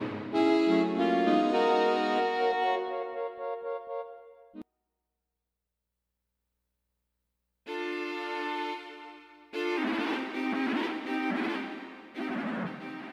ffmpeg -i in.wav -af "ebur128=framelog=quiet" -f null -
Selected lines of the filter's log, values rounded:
Integrated loudness:
  I:         -29.9 LUFS
  Threshold: -40.7 LUFS
Loudness range:
  LRA:        15.7 LU
  Threshold: -53.0 LUFS
  LRA low:   -42.9 LUFS
  LRA high:  -27.2 LUFS